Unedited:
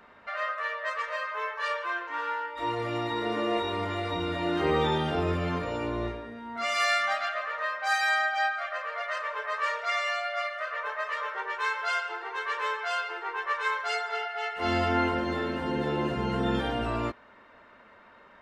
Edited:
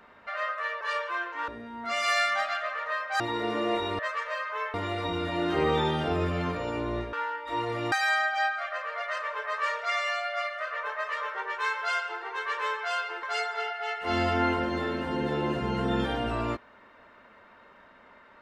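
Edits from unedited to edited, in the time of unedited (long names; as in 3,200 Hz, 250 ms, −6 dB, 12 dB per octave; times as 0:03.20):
0:00.81–0:01.56: move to 0:03.81
0:02.23–0:03.02: swap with 0:06.20–0:07.92
0:13.23–0:13.78: remove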